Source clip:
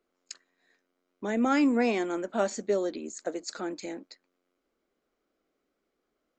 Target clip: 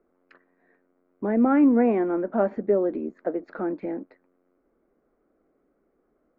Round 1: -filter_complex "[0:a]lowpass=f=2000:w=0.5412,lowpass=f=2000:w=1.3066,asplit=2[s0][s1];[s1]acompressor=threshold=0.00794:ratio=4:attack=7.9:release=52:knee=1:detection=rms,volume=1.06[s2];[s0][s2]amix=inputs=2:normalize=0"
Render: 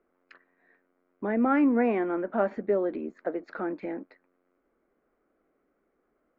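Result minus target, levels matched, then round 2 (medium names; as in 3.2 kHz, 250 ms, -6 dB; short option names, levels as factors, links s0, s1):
1 kHz band +3.0 dB
-filter_complex "[0:a]lowpass=f=2000:w=0.5412,lowpass=f=2000:w=1.3066,tiltshelf=f=1200:g=6,asplit=2[s0][s1];[s1]acompressor=threshold=0.00794:ratio=4:attack=7.9:release=52:knee=1:detection=rms,volume=1.06[s2];[s0][s2]amix=inputs=2:normalize=0"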